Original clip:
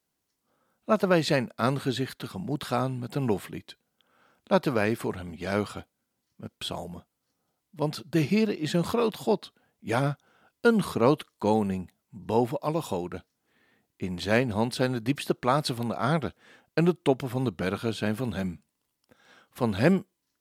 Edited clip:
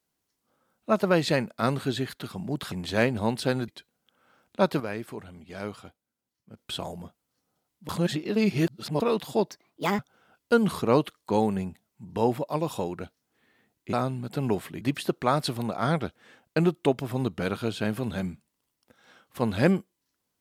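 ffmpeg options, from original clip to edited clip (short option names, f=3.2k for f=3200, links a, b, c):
-filter_complex "[0:a]asplit=11[a][b][c][d][e][f][g][h][i][j][k];[a]atrim=end=2.722[l];[b]atrim=start=14.058:end=15.022[m];[c]atrim=start=3.598:end=4.722[n];[d]atrim=start=4.718:end=6.492,asetpts=PTS-STARTPTS,volume=-8dB[o];[e]atrim=start=6.488:end=7.812[p];[f]atrim=start=7.808:end=8.922,asetpts=PTS-STARTPTS,areverse[q];[g]atrim=start=8.918:end=9.434[r];[h]atrim=start=9.43:end=10.12,asetpts=PTS-STARTPTS,asetrate=63504,aresample=44100,atrim=end_sample=21131,asetpts=PTS-STARTPTS[s];[i]atrim=start=10.116:end=14.062[t];[j]atrim=start=2.718:end=3.602[u];[k]atrim=start=15.018[v];[l][m]acrossfade=d=0.004:c1=hsin:c2=hsin[w];[w][n]acrossfade=d=0.004:c1=hsin:c2=hsin[x];[x][o]acrossfade=d=0.004:c1=hsin:c2=hsin[y];[y][p]acrossfade=d=0.004:c1=hsin:c2=hsin[z];[z][q]acrossfade=d=0.004:c1=hsin:c2=hsin[aa];[aa][r]acrossfade=d=0.004:c1=hsin:c2=hsin[ab];[ab][s]acrossfade=d=0.004:c1=hsin:c2=hsin[ac];[ac][t]acrossfade=d=0.004:c1=hsin:c2=hsin[ad];[ad][u]acrossfade=d=0.004:c1=hsin:c2=hsin[ae];[ae][v]acrossfade=d=0.004:c1=hsin:c2=hsin"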